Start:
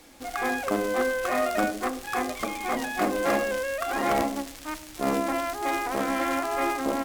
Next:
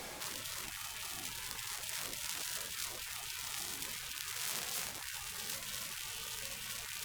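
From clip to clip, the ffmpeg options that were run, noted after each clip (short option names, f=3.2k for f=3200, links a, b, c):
-af "areverse,acompressor=threshold=-34dB:ratio=6,areverse,afftfilt=real='re*lt(hypot(re,im),0.00891)':imag='im*lt(hypot(re,im),0.00891)':win_size=1024:overlap=0.75,volume=8.5dB"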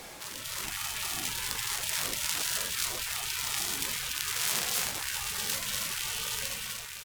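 -filter_complex "[0:a]dynaudnorm=f=150:g=7:m=9dB,asplit=2[a][b];[b]adelay=43,volume=-13.5dB[c];[a][c]amix=inputs=2:normalize=0,aecho=1:1:535:0.126"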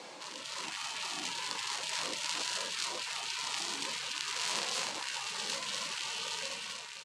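-af "highpass=f=160:w=0.5412,highpass=f=160:w=1.3066,equalizer=f=310:t=q:w=4:g=5,equalizer=f=530:t=q:w=4:g=7,equalizer=f=980:t=q:w=4:g=9,equalizer=f=2.8k:t=q:w=4:g=4,equalizer=f=4.3k:t=q:w=4:g=5,lowpass=f=8.1k:w=0.5412,lowpass=f=8.1k:w=1.3066,volume=-5dB"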